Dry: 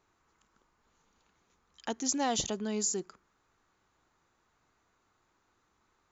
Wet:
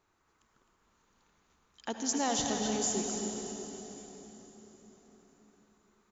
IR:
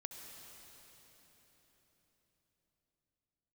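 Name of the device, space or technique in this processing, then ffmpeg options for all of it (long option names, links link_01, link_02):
cave: -filter_complex "[0:a]aecho=1:1:260:0.398[link_01];[1:a]atrim=start_sample=2205[link_02];[link_01][link_02]afir=irnorm=-1:irlink=0,volume=3.5dB"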